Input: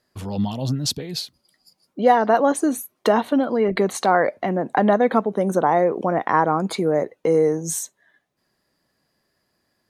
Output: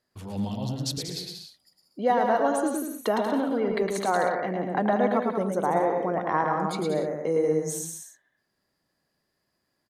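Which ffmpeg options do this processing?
ffmpeg -i in.wav -af "aecho=1:1:110|187|240.9|278.6|305:0.631|0.398|0.251|0.158|0.1,volume=-8dB" out.wav

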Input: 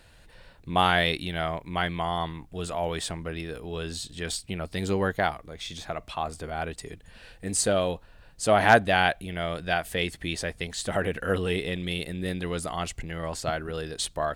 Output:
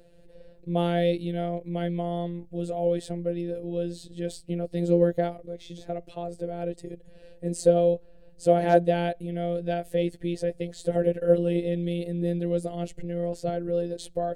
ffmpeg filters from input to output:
ffmpeg -i in.wav -af "lowshelf=frequency=720:width_type=q:width=3:gain=12.5,afftfilt=real='hypot(re,im)*cos(PI*b)':imag='0':win_size=1024:overlap=0.75,volume=-8dB" out.wav

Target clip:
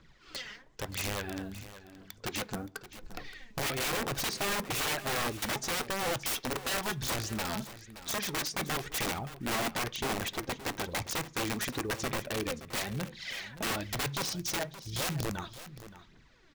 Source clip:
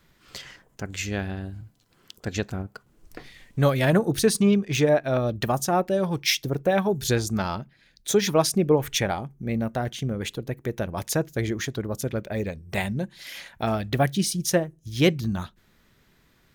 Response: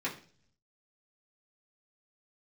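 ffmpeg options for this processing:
-filter_complex "[0:a]lowpass=frequency=6600:width=0.5412,lowpass=frequency=6600:width=1.3066,equalizer=frequency=94:width=7.1:gain=-6,acompressor=threshold=-30dB:ratio=2,acrusher=bits=8:mode=log:mix=0:aa=0.000001,aphaser=in_gain=1:out_gain=1:delay=4.9:decay=0.61:speed=0.99:type=triangular,aeval=exprs='(mod(16.8*val(0)+1,2)-1)/16.8':channel_layout=same,aecho=1:1:572:0.188,asplit=2[link_01][link_02];[1:a]atrim=start_sample=2205[link_03];[link_02][link_03]afir=irnorm=-1:irlink=0,volume=-18dB[link_04];[link_01][link_04]amix=inputs=2:normalize=0,volume=-3dB"

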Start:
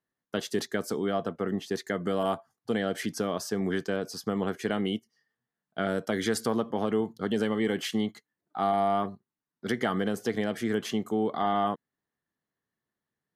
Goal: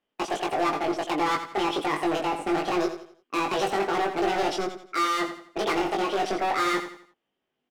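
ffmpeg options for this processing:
ffmpeg -i in.wav -filter_complex "[0:a]lowpass=2000,asoftclip=type=hard:threshold=-29.5dB,asplit=2[link_01][link_02];[link_02]adelay=35,volume=-3dB[link_03];[link_01][link_03]amix=inputs=2:normalize=0,asplit=2[link_04][link_05];[link_05]aecho=0:1:148|296|444|592:0.316|0.117|0.0433|0.016[link_06];[link_04][link_06]amix=inputs=2:normalize=0,asetrate=76440,aresample=44100,volume=6dB" out.wav

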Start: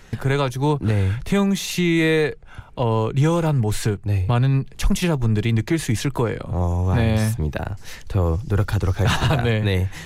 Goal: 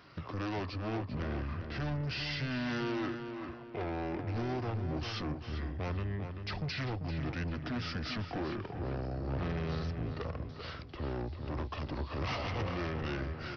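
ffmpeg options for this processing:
ffmpeg -i in.wav -filter_complex "[0:a]highpass=150,aresample=16000,asoftclip=type=tanh:threshold=-26.5dB,aresample=44100,asplit=2[link_01][link_02];[link_02]adelay=291,lowpass=frequency=3900:poles=1,volume=-7dB,asplit=2[link_03][link_04];[link_04]adelay=291,lowpass=frequency=3900:poles=1,volume=0.43,asplit=2[link_05][link_06];[link_06]adelay=291,lowpass=frequency=3900:poles=1,volume=0.43,asplit=2[link_07][link_08];[link_08]adelay=291,lowpass=frequency=3900:poles=1,volume=0.43,asplit=2[link_09][link_10];[link_10]adelay=291,lowpass=frequency=3900:poles=1,volume=0.43[link_11];[link_01][link_03][link_05][link_07][link_09][link_11]amix=inputs=6:normalize=0,asetrate=32667,aresample=44100,volume=-7dB" out.wav

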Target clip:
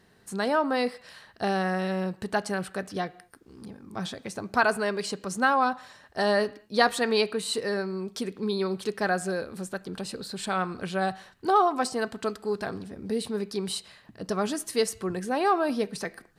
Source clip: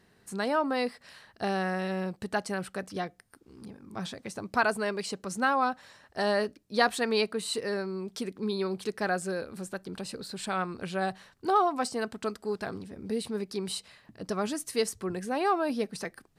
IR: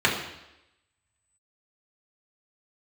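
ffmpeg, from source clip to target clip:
-filter_complex "[0:a]asplit=2[link_01][link_02];[1:a]atrim=start_sample=2205,afade=type=out:start_time=0.29:duration=0.01,atrim=end_sample=13230,lowshelf=frequency=420:gain=-9[link_03];[link_02][link_03]afir=irnorm=-1:irlink=0,volume=-29.5dB[link_04];[link_01][link_04]amix=inputs=2:normalize=0,volume=2.5dB"

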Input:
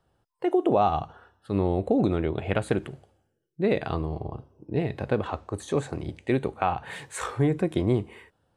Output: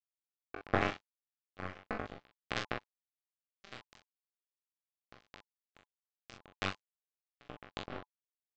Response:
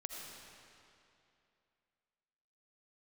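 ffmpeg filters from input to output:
-filter_complex "[0:a]lowpass=frequency=2600:poles=1,bandreject=frequency=70.7:width_type=h:width=4,bandreject=frequency=141.4:width_type=h:width=4,bandreject=frequency=212.1:width_type=h:width=4,bandreject=frequency=282.8:width_type=h:width=4,bandreject=frequency=353.5:width_type=h:width=4,bandreject=frequency=424.2:width_type=h:width=4,bandreject=frequency=494.9:width_type=h:width=4,bandreject=frequency=565.6:width_type=h:width=4,bandreject=frequency=636.3:width_type=h:width=4,bandreject=frequency=707:width_type=h:width=4,bandreject=frequency=777.7:width_type=h:width=4[link_01];[1:a]atrim=start_sample=2205,atrim=end_sample=4410,asetrate=52920,aresample=44100[link_02];[link_01][link_02]afir=irnorm=-1:irlink=0,aresample=16000,acrusher=bits=2:mix=0:aa=0.5,aresample=44100,asuperstop=centerf=940:order=8:qfactor=7.2,asplit=2[link_03][link_04];[link_04]aecho=0:1:32|42:0.398|0.531[link_05];[link_03][link_05]amix=inputs=2:normalize=0,flanger=delay=16.5:depth=7.5:speed=0.41,volume=10dB"

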